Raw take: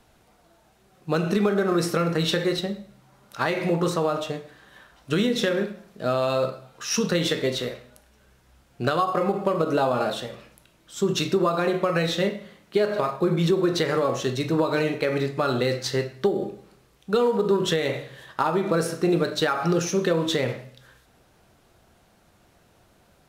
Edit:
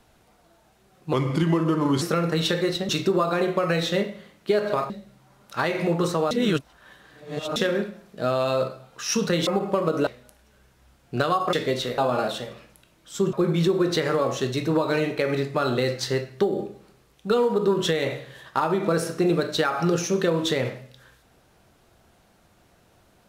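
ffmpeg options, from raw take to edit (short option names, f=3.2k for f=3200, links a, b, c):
-filter_complex "[0:a]asplit=12[a][b][c][d][e][f][g][h][i][j][k][l];[a]atrim=end=1.134[m];[b]atrim=start=1.13:end=1.85,asetpts=PTS-STARTPTS,asetrate=35721,aresample=44100[n];[c]atrim=start=1.846:end=2.722[o];[d]atrim=start=11.148:end=13.162[p];[e]atrim=start=2.718:end=4.132[q];[f]atrim=start=4.128:end=5.382,asetpts=PTS-STARTPTS,areverse[r];[g]atrim=start=5.378:end=7.292[s];[h]atrim=start=9.198:end=9.802[t];[i]atrim=start=7.738:end=9.202[u];[j]atrim=start=7.288:end=7.742[v];[k]atrim=start=9.798:end=11.152[w];[l]atrim=start=13.158[x];[m][n]acrossfade=d=0.004:c1=hsin:c2=hsin[y];[y][o]acrossfade=d=0.004:c1=hsin:c2=hsin[z];[z][p]acrossfade=d=0.004:c1=hsin:c2=hsin[aa];[aa][q]acrossfade=d=0.004:c1=hsin:c2=hsin[ab];[ab][r]acrossfade=d=0.004:c1=hsin:c2=hsin[ac];[ac][s]acrossfade=d=0.004:c1=hsin:c2=hsin[ad];[ad][t]acrossfade=d=0.004:c1=hsin:c2=hsin[ae];[ae][u]acrossfade=d=0.004:c1=hsin:c2=hsin[af];[af][v]acrossfade=d=0.004:c1=hsin:c2=hsin[ag];[ag][w]acrossfade=d=0.004:c1=hsin:c2=hsin[ah];[ah][x]acrossfade=d=0.004:c1=hsin:c2=hsin"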